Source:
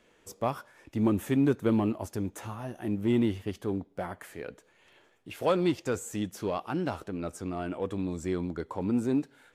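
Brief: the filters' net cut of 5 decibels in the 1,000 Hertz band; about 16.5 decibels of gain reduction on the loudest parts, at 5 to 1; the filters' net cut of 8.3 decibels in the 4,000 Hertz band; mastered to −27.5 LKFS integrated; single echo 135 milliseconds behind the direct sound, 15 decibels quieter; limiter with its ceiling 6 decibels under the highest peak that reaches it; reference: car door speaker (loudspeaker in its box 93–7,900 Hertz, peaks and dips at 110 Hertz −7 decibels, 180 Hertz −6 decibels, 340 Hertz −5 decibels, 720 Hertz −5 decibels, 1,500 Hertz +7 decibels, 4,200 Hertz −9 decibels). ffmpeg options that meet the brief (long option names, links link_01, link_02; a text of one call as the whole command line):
ffmpeg -i in.wav -af "equalizer=frequency=1000:width_type=o:gain=-5.5,equalizer=frequency=4000:width_type=o:gain=-8.5,acompressor=threshold=-41dB:ratio=5,alimiter=level_in=11dB:limit=-24dB:level=0:latency=1,volume=-11dB,highpass=93,equalizer=frequency=110:width_type=q:width=4:gain=-7,equalizer=frequency=180:width_type=q:width=4:gain=-6,equalizer=frequency=340:width_type=q:width=4:gain=-5,equalizer=frequency=720:width_type=q:width=4:gain=-5,equalizer=frequency=1500:width_type=q:width=4:gain=7,equalizer=frequency=4200:width_type=q:width=4:gain=-9,lowpass=frequency=7900:width=0.5412,lowpass=frequency=7900:width=1.3066,aecho=1:1:135:0.178,volume=21dB" out.wav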